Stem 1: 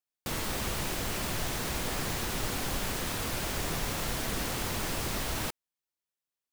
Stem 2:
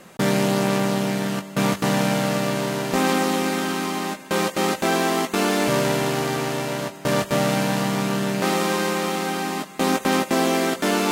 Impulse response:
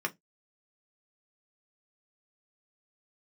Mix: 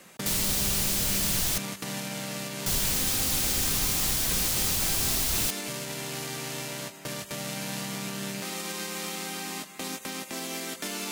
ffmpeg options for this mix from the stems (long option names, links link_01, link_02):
-filter_complex "[0:a]volume=2dB,asplit=3[link_01][link_02][link_03];[link_01]atrim=end=1.58,asetpts=PTS-STARTPTS,afade=type=out:start_time=1.576:duration=0.004:curve=hsin[link_04];[link_02]atrim=start=1.58:end=2.66,asetpts=PTS-STARTPTS,volume=0[link_05];[link_03]atrim=start=2.66,asetpts=PTS-STARTPTS,afade=type=in:duration=0.004:curve=hsin[link_06];[link_04][link_05][link_06]concat=n=3:v=0:a=1[link_07];[1:a]equalizer=frequency=2200:width_type=o:width=0.77:gain=3.5,alimiter=limit=-15dB:level=0:latency=1:release=193,volume=-9dB[link_08];[link_07][link_08]amix=inputs=2:normalize=0,acrossover=split=200|3000[link_09][link_10][link_11];[link_10]acompressor=threshold=-37dB:ratio=6[link_12];[link_09][link_12][link_11]amix=inputs=3:normalize=0,highshelf=frequency=3100:gain=10"